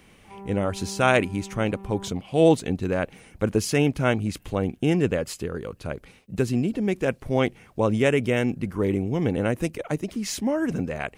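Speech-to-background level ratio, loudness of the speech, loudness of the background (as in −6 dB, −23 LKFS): 16.5 dB, −25.0 LKFS, −41.5 LKFS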